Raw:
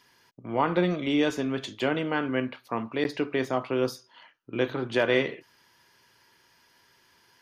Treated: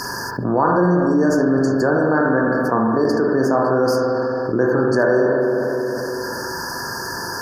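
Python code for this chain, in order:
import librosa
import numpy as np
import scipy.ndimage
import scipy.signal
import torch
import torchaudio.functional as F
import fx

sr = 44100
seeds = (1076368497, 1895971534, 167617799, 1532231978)

y = fx.brickwall_bandstop(x, sr, low_hz=1800.0, high_hz=4400.0)
y = fx.rev_spring(y, sr, rt60_s=1.7, pass_ms=(40, 45), chirp_ms=35, drr_db=0.0)
y = fx.env_flatten(y, sr, amount_pct=70)
y = F.gain(torch.from_numpy(y), 4.0).numpy()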